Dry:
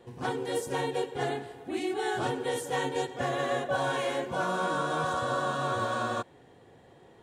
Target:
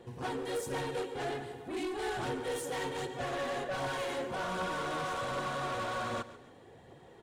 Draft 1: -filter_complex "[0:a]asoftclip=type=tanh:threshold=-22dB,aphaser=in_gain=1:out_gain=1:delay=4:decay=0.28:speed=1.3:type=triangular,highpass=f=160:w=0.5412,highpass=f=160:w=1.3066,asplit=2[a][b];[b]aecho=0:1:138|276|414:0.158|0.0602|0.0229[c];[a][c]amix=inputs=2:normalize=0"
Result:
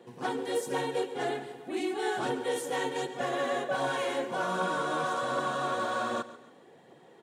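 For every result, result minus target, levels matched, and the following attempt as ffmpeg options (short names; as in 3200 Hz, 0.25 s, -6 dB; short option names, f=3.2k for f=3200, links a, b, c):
soft clip: distortion -12 dB; 125 Hz band -6.0 dB
-filter_complex "[0:a]asoftclip=type=tanh:threshold=-33dB,aphaser=in_gain=1:out_gain=1:delay=4:decay=0.28:speed=1.3:type=triangular,highpass=f=160:w=0.5412,highpass=f=160:w=1.3066,asplit=2[a][b];[b]aecho=0:1:138|276|414:0.158|0.0602|0.0229[c];[a][c]amix=inputs=2:normalize=0"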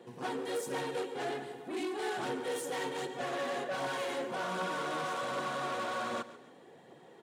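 125 Hz band -6.5 dB
-filter_complex "[0:a]asoftclip=type=tanh:threshold=-33dB,aphaser=in_gain=1:out_gain=1:delay=4:decay=0.28:speed=1.3:type=triangular,asplit=2[a][b];[b]aecho=0:1:138|276|414:0.158|0.0602|0.0229[c];[a][c]amix=inputs=2:normalize=0"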